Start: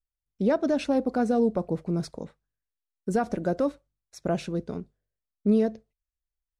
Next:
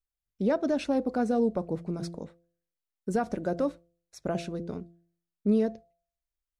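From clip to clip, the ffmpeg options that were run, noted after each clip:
-af "bandreject=f=170.5:t=h:w=4,bandreject=f=341:t=h:w=4,bandreject=f=511.5:t=h:w=4,bandreject=f=682:t=h:w=4,volume=0.75"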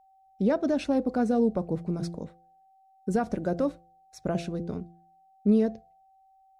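-af "equalizer=f=84:t=o:w=2.8:g=5.5,aeval=exprs='val(0)+0.00126*sin(2*PI*770*n/s)':c=same"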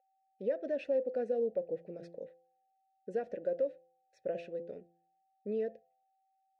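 -filter_complex "[0:a]asplit=3[s0][s1][s2];[s0]bandpass=f=530:t=q:w=8,volume=1[s3];[s1]bandpass=f=1840:t=q:w=8,volume=0.501[s4];[s2]bandpass=f=2480:t=q:w=8,volume=0.355[s5];[s3][s4][s5]amix=inputs=3:normalize=0,alimiter=level_in=1.26:limit=0.0631:level=0:latency=1:release=173,volume=0.794,volume=1.33"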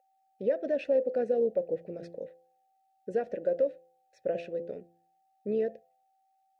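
-af "tremolo=f=68:d=0.261,volume=2.11"

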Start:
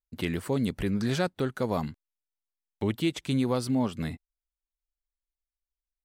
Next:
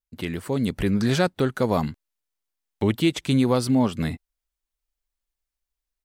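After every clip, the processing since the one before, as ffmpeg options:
-af "dynaudnorm=f=430:g=3:m=2.11"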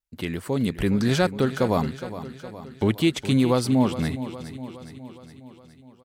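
-af "aecho=1:1:414|828|1242|1656|2070|2484:0.224|0.132|0.0779|0.046|0.0271|0.016"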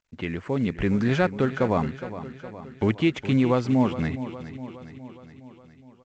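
-af "highshelf=f=3200:t=q:w=1.5:g=-8.5,volume=0.891" -ar 16000 -c:a pcm_mulaw

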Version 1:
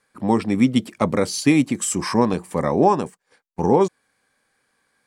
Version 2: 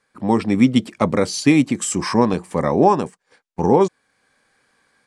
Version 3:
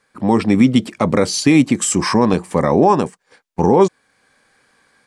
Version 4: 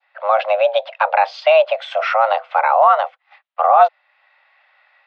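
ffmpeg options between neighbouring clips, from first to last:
-af "lowpass=8600,dynaudnorm=f=240:g=3:m=2"
-af "alimiter=level_in=2:limit=0.891:release=50:level=0:latency=1,volume=0.891"
-af "highpass=f=280:t=q:w=0.5412,highpass=f=280:t=q:w=1.307,lowpass=f=3400:t=q:w=0.5176,lowpass=f=3400:t=q:w=0.7071,lowpass=f=3400:t=q:w=1.932,afreqshift=320,adynamicequalizer=threshold=0.0316:dfrequency=1800:dqfactor=0.85:tfrequency=1800:tqfactor=0.85:attack=5:release=100:ratio=0.375:range=2:mode=cutabove:tftype=bell,volume=1.26"

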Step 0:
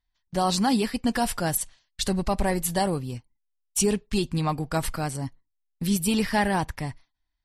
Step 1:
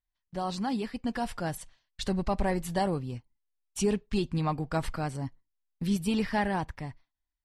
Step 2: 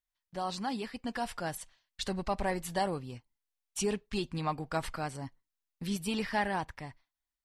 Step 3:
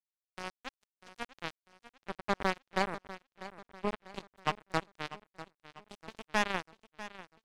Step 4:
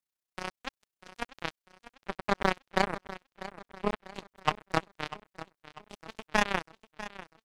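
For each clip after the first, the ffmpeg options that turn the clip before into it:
-af "aemphasis=mode=reproduction:type=50fm,dynaudnorm=f=430:g=7:m=1.88,volume=0.355"
-af "lowshelf=f=390:g=-8.5"
-filter_complex "[0:a]acrossover=split=160|2500[s0][s1][s2];[s2]acompressor=threshold=0.00251:ratio=10[s3];[s0][s1][s3]amix=inputs=3:normalize=0,acrusher=bits=3:mix=0:aa=0.5,aecho=1:1:645|1290|1935|2580:0.178|0.08|0.036|0.0162,volume=1.26"
-af "tremolo=f=31:d=0.824,volume=2.24"

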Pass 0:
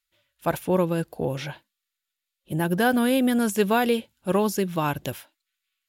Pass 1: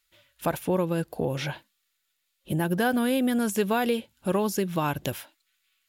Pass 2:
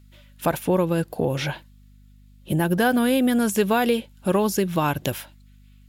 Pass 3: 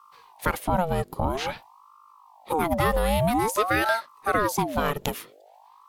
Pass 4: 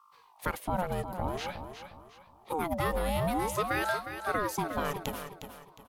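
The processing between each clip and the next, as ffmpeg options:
-af "acompressor=threshold=0.01:ratio=2,volume=2.66"
-af "aeval=exprs='val(0)+0.002*(sin(2*PI*50*n/s)+sin(2*PI*2*50*n/s)/2+sin(2*PI*3*50*n/s)/3+sin(2*PI*4*50*n/s)/4+sin(2*PI*5*50*n/s)/5)':c=same,volume=1.68"
-af "aeval=exprs='val(0)*sin(2*PI*710*n/s+710*0.6/0.5*sin(2*PI*0.5*n/s))':c=same"
-af "aecho=1:1:359|718|1077|1436:0.335|0.111|0.0365|0.012,volume=0.422"

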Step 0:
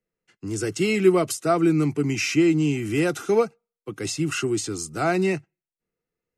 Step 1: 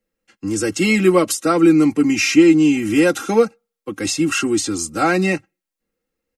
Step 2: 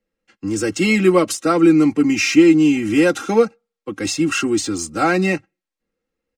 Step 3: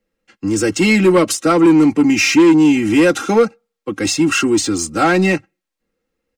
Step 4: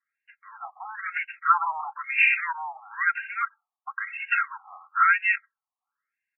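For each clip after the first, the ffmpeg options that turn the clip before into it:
-af "aecho=1:1:3.7:0.77,volume=1.88"
-af "adynamicsmooth=sensitivity=4:basefreq=7300"
-af "asoftclip=type=tanh:threshold=0.316,volume=1.78"
-af "highpass=590,lowpass=2800,afftfilt=real='re*between(b*sr/1024,890*pow(2100/890,0.5+0.5*sin(2*PI*1*pts/sr))/1.41,890*pow(2100/890,0.5+0.5*sin(2*PI*1*pts/sr))*1.41)':imag='im*between(b*sr/1024,890*pow(2100/890,0.5+0.5*sin(2*PI*1*pts/sr))/1.41,890*pow(2100/890,0.5+0.5*sin(2*PI*1*pts/sr))*1.41)':win_size=1024:overlap=0.75"

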